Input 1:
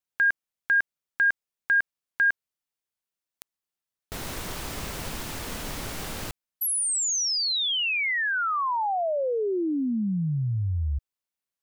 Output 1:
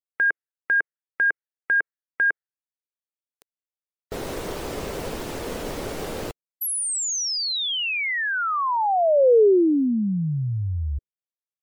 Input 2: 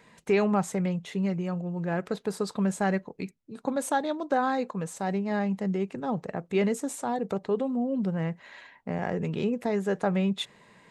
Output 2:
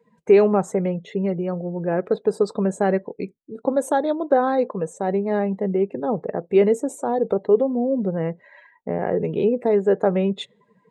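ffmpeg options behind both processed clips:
-af "afftdn=nr=21:nf=-47,equalizer=f=450:w=1:g=12"

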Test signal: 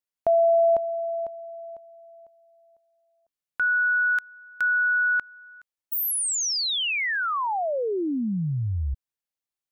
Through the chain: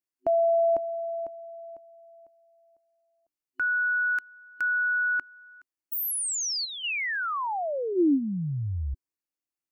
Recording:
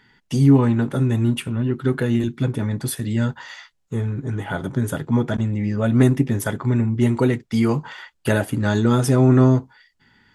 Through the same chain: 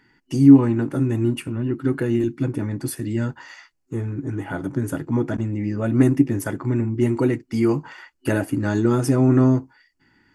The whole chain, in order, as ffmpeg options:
-af "superequalizer=6b=2.82:13b=0.398,volume=-3.5dB"

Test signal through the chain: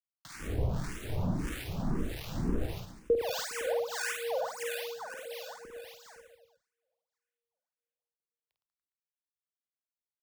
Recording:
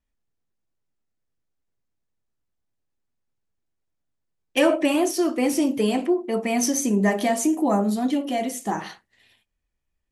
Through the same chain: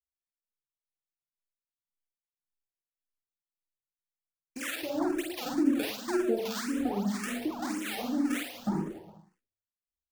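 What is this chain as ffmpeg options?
-filter_complex "[0:a]agate=range=-31dB:threshold=-46dB:ratio=16:detection=peak,lowshelf=f=400:g=11.5,dynaudnorm=f=380:g=13:m=9dB,alimiter=limit=-13dB:level=0:latency=1:release=399,acrossover=split=81|770[a][b][c];[a]acompressor=threshold=-27dB:ratio=4[d];[b]acompressor=threshold=-18dB:ratio=4[e];[c]acompressor=threshold=-44dB:ratio=4[f];[d][e][f]amix=inputs=3:normalize=0,asplit=2[g][h];[h]adelay=33,volume=-10.5dB[i];[g][i]amix=inputs=2:normalize=0,acrusher=samples=25:mix=1:aa=0.000001:lfo=1:lforange=40:lforate=2.8,acrossover=split=1200[j][k];[j]aeval=exprs='val(0)*(1-1/2+1/2*cos(2*PI*1.6*n/s))':c=same[l];[k]aeval=exprs='val(0)*(1-1/2-1/2*cos(2*PI*1.6*n/s))':c=same[m];[l][m]amix=inputs=2:normalize=0,asplit=2[n][o];[o]aecho=0:1:50|112.5|190.6|288.3|410.4:0.631|0.398|0.251|0.158|0.1[p];[n][p]amix=inputs=2:normalize=0,asplit=2[q][r];[r]afreqshift=1.9[s];[q][s]amix=inputs=2:normalize=1,volume=-2.5dB"

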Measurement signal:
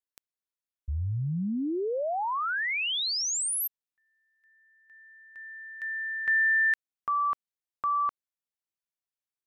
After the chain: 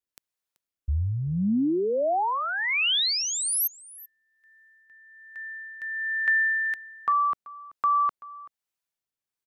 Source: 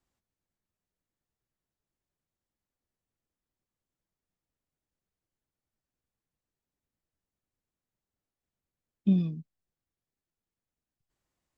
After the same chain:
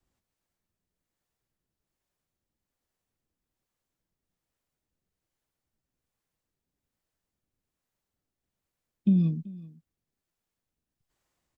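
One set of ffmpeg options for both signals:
-filter_complex "[0:a]adynamicequalizer=threshold=0.00562:dfrequency=210:dqfactor=2.3:tfrequency=210:tqfactor=2.3:attack=5:release=100:ratio=0.3:range=2.5:mode=boostabove:tftype=bell,asplit=2[a][b];[b]alimiter=limit=-23dB:level=0:latency=1,volume=0.5dB[c];[a][c]amix=inputs=2:normalize=0,acompressor=threshold=-24dB:ratio=2.5:attack=83:release=32:knee=1:detection=rms,acrossover=split=420[d][e];[d]aeval=exprs='val(0)*(1-0.5/2+0.5/2*cos(2*PI*1.2*n/s))':c=same[f];[e]aeval=exprs='val(0)*(1-0.5/2-0.5/2*cos(2*PI*1.2*n/s))':c=same[g];[f][g]amix=inputs=2:normalize=0,aecho=1:1:383:0.1"

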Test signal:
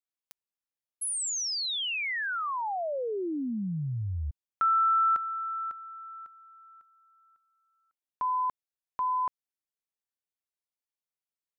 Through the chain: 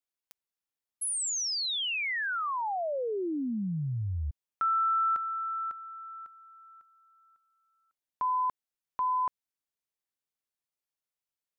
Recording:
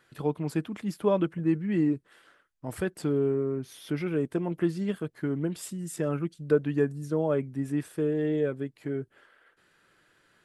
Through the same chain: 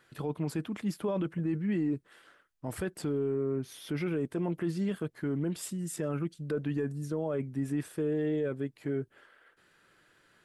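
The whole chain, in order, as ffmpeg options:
-af "alimiter=limit=-23.5dB:level=0:latency=1:release=13"

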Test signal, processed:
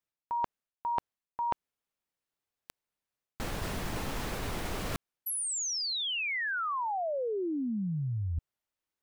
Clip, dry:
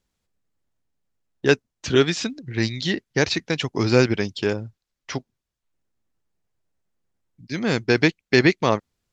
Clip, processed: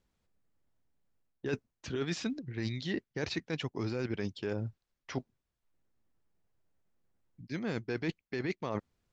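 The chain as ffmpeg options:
-af "alimiter=limit=-11.5dB:level=0:latency=1:release=18,highshelf=f=3.2k:g=-8.5,areverse,acompressor=threshold=-32dB:ratio=6,areverse"

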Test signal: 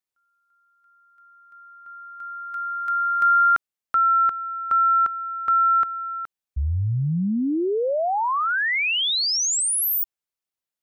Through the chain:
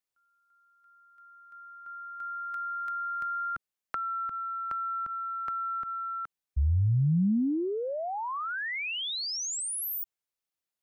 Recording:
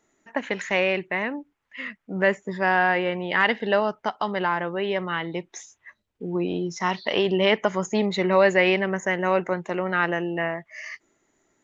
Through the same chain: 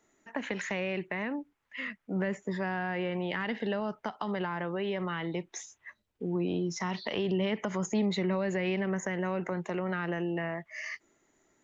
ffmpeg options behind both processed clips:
-filter_complex "[0:a]acrossover=split=250[a][b];[b]acompressor=threshold=-32dB:ratio=6:attack=7.1:release=80:knee=2.83:detection=peak[c];[a][c]amix=inputs=2:normalize=0,volume=-1.5dB"

